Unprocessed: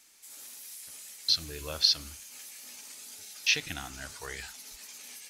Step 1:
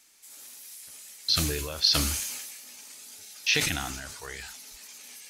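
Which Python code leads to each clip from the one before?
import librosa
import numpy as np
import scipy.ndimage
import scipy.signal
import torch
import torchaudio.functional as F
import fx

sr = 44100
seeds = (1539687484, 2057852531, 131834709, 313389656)

y = fx.sustainer(x, sr, db_per_s=35.0)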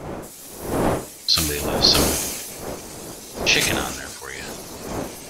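y = fx.dmg_wind(x, sr, seeds[0], corner_hz=500.0, level_db=-33.0)
y = fx.low_shelf(y, sr, hz=180.0, db=-6.5)
y = y * 10.0 ** (6.5 / 20.0)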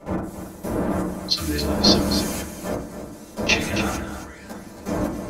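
y = fx.level_steps(x, sr, step_db=16)
y = y + 10.0 ** (-9.5 / 20.0) * np.pad(y, (int(272 * sr / 1000.0), 0))[:len(y)]
y = fx.rev_fdn(y, sr, rt60_s=0.48, lf_ratio=1.55, hf_ratio=0.3, size_ms=30.0, drr_db=-8.5)
y = y * 10.0 ** (-3.5 / 20.0)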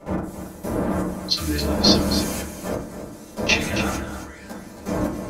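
y = fx.doubler(x, sr, ms=26.0, db=-11.5)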